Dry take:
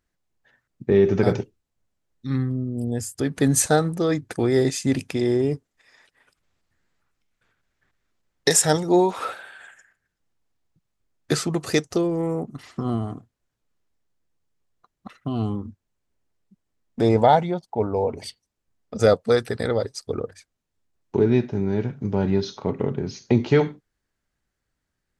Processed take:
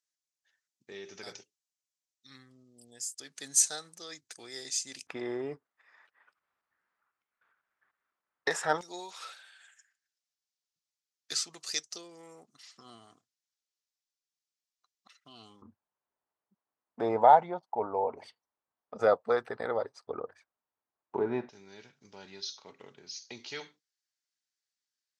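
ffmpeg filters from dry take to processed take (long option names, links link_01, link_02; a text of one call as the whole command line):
ffmpeg -i in.wav -af "asetnsamples=nb_out_samples=441:pad=0,asendcmd='5.07 bandpass f 1200;8.81 bandpass f 5400;15.62 bandpass f 970;21.49 bandpass f 5300',bandpass=frequency=6100:width_type=q:width=1.7:csg=0" out.wav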